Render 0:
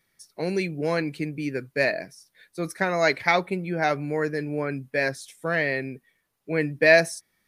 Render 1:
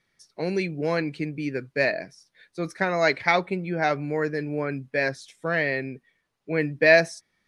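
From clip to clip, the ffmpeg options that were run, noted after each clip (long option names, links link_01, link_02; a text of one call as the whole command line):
ffmpeg -i in.wav -af "lowpass=6200" out.wav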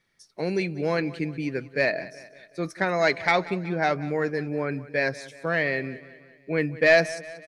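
ffmpeg -i in.wav -af "asoftclip=type=tanh:threshold=-7.5dB,aecho=1:1:186|372|558|744:0.126|0.0667|0.0354|0.0187" out.wav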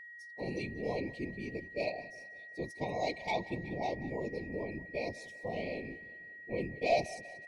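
ffmpeg -i in.wav -af "afftfilt=real='hypot(re,im)*cos(2*PI*random(0))':imag='hypot(re,im)*sin(2*PI*random(1))':win_size=512:overlap=0.75,asuperstop=centerf=1500:order=12:qfactor=1.2,aeval=exprs='val(0)+0.00708*sin(2*PI*1900*n/s)':channel_layout=same,volume=-4.5dB" out.wav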